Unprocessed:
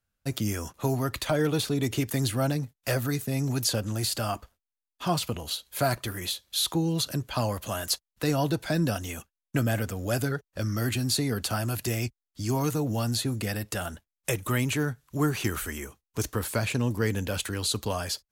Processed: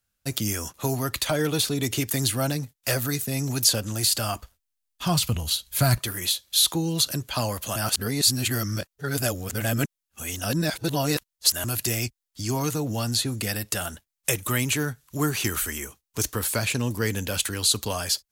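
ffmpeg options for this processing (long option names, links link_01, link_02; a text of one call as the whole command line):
ffmpeg -i in.wav -filter_complex "[0:a]asettb=1/sr,asplit=3[link_01][link_02][link_03];[link_01]atrim=end=4.094[link_04];[link_02]atrim=start=4.09:end=5.99,asetpts=PTS-STARTPTS,afade=type=in:duration=0.004:curve=qsin,afade=type=out:start_time=1.896:duration=0.004:curve=qsin,asubboost=boost=8.5:cutoff=180[link_05];[link_03]atrim=start=5.986[link_06];[link_04][link_05]acrossfade=duration=0.004:curve1=hsin:curve2=qsin[link_07];[link_07][link_06]acrossfade=duration=0.004:curve1=qsin:curve2=hsin,asettb=1/sr,asplit=3[link_08][link_09][link_10];[link_08]atrim=end=12.414[link_11];[link_09]atrim=start=12.41:end=13.38,asetpts=PTS-STARTPTS,afade=type=in:duration=0.004:curve=qsin,afade=type=out:start_time=0.966:duration=0.004:curve=qsin,highshelf=frequency=9300:gain=-7[link_12];[link_10]atrim=start=13.376[link_13];[link_11][link_12]acrossfade=duration=0.004:curve1=hsin:curve2=qsin[link_14];[link_14][link_13]acrossfade=duration=0.004:curve1=qsin:curve2=hsin,asplit=3[link_15][link_16][link_17];[link_15]atrim=end=7.762[link_18];[link_16]atrim=start=7.758:end=11.642,asetpts=PTS-STARTPTS,areverse[link_19];[link_17]atrim=start=11.638[link_20];[link_18][link_19]acrossfade=duration=0.004:curve1=hsin:curve2=hsin[link_21];[link_21][link_20]acrossfade=duration=0.004:curve1=hsin:curve2=hsin,highshelf=frequency=2500:gain=9" out.wav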